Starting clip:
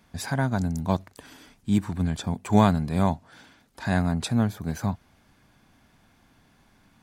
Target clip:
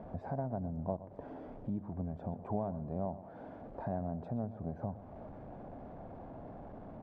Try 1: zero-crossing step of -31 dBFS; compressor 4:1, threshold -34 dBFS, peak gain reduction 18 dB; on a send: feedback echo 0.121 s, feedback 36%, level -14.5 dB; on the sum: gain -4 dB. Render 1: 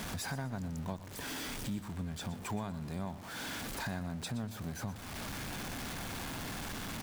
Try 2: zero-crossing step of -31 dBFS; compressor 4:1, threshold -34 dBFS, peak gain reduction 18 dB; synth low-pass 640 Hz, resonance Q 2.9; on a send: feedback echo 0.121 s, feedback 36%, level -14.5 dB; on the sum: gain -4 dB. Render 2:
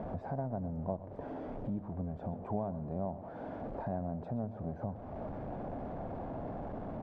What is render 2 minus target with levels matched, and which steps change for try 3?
zero-crossing step: distortion +8 dB
change: zero-crossing step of -39.5 dBFS

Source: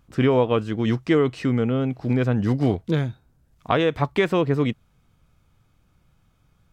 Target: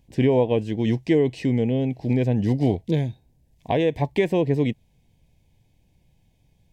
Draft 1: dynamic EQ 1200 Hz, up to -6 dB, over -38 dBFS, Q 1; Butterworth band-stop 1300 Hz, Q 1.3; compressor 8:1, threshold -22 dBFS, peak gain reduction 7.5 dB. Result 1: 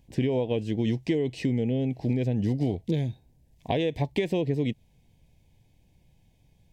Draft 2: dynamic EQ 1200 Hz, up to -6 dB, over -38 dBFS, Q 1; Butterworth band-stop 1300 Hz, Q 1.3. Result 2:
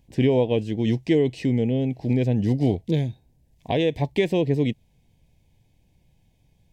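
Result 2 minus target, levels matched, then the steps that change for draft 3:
4000 Hz band +3.0 dB
change: dynamic EQ 4000 Hz, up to -6 dB, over -38 dBFS, Q 1

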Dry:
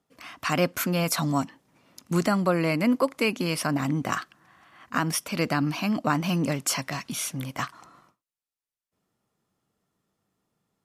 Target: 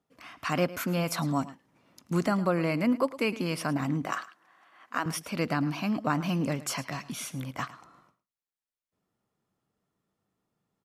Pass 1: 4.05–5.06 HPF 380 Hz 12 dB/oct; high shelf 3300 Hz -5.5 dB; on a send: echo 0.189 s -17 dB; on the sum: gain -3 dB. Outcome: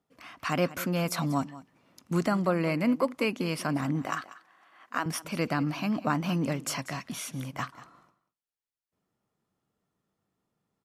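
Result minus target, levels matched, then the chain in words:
echo 81 ms late
4.05–5.06 HPF 380 Hz 12 dB/oct; high shelf 3300 Hz -5.5 dB; on a send: echo 0.108 s -17 dB; on the sum: gain -3 dB

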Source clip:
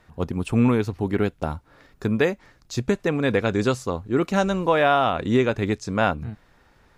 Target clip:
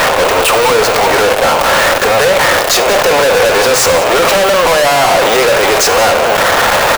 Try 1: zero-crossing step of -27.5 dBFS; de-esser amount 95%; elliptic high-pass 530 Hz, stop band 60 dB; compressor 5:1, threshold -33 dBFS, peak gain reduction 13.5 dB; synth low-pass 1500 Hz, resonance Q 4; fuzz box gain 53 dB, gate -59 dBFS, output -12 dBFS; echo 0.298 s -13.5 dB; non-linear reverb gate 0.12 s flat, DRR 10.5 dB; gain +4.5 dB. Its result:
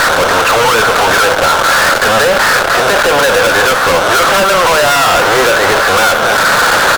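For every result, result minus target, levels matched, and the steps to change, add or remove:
echo 0.115 s late; compressor: peak gain reduction +6 dB; 2000 Hz band +2.5 dB
change: echo 0.183 s -13.5 dB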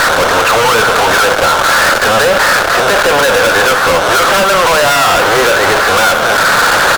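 compressor: peak gain reduction +6 dB; 2000 Hz band +3.0 dB
change: compressor 5:1, threshold -25.5 dBFS, peak gain reduction 7.5 dB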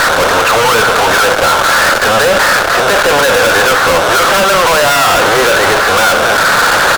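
2000 Hz band +2.5 dB
remove: synth low-pass 1500 Hz, resonance Q 4

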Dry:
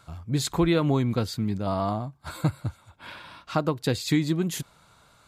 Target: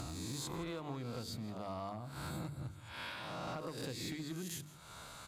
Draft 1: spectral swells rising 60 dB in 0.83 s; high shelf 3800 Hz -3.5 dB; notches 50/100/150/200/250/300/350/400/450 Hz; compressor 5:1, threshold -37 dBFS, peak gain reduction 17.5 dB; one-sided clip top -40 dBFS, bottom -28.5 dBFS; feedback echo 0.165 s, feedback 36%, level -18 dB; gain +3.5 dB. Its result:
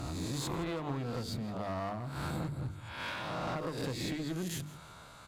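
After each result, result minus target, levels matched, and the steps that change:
compressor: peak gain reduction -8 dB; 8000 Hz band -4.0 dB
change: compressor 5:1, threshold -46.5 dBFS, peak gain reduction 25.5 dB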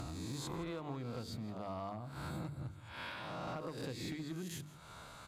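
8000 Hz band -4.5 dB
change: high shelf 3800 Hz +4 dB

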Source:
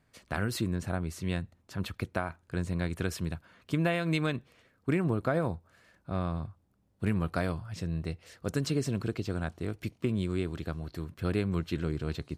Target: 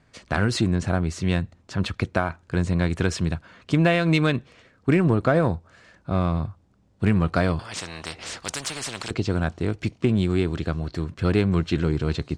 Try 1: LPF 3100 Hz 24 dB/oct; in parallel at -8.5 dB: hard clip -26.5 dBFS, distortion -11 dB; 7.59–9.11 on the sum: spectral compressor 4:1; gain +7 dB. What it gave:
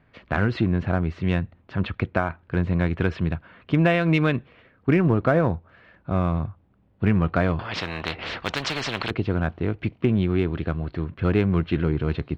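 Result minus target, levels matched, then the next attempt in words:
8000 Hz band -11.5 dB
LPF 8000 Hz 24 dB/oct; in parallel at -8.5 dB: hard clip -26.5 dBFS, distortion -11 dB; 7.59–9.11 on the sum: spectral compressor 4:1; gain +7 dB

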